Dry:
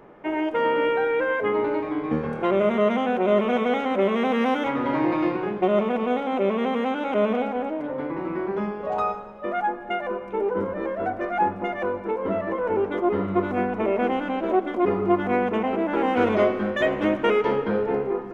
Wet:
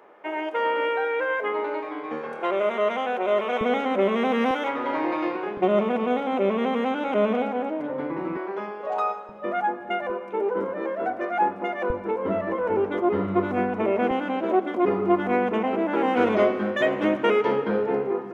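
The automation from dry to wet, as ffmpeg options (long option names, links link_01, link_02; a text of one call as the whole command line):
ffmpeg -i in.wav -af "asetnsamples=nb_out_samples=441:pad=0,asendcmd='3.61 highpass f 170;4.51 highpass f 380;5.57 highpass f 110;8.37 highpass f 440;9.29 highpass f 120;10.1 highpass f 250;11.9 highpass f 60;14.11 highpass f 140',highpass=490" out.wav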